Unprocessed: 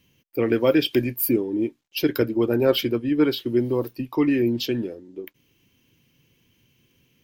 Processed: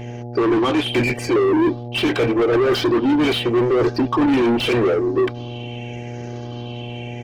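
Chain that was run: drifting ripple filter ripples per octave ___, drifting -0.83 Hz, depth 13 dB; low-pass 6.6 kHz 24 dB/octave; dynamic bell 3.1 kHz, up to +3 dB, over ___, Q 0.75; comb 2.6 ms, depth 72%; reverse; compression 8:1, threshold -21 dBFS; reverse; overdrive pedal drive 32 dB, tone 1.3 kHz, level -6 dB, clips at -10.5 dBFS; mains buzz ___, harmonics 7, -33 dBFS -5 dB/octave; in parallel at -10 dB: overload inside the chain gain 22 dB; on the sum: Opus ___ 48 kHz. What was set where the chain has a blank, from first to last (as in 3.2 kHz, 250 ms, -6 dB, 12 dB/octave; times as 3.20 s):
0.52, -37 dBFS, 120 Hz, 16 kbps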